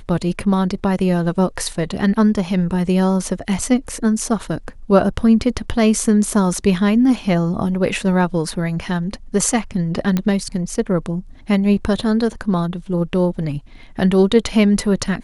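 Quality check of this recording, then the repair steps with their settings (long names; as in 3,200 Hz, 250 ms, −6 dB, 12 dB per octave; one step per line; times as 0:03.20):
0:10.17: click −7 dBFS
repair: click removal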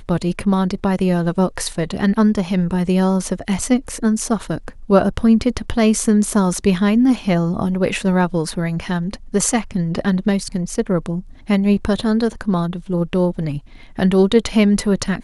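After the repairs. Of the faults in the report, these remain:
none of them is left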